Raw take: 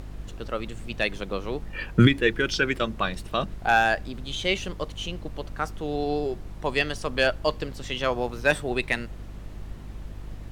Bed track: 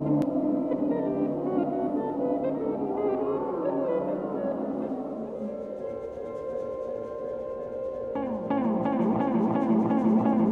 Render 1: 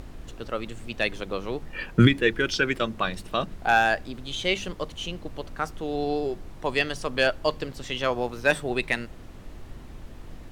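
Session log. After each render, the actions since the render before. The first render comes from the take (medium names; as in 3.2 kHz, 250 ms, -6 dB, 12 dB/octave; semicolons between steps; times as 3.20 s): de-hum 50 Hz, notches 4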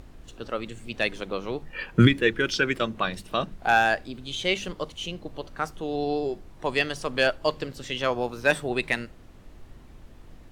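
noise print and reduce 6 dB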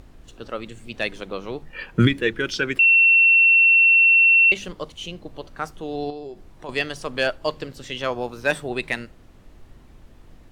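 2.79–4.52 s: bleep 2.71 kHz -11 dBFS; 6.10–6.69 s: compression 2:1, threshold -37 dBFS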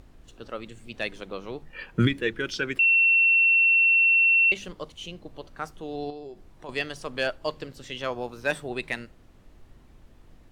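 trim -5 dB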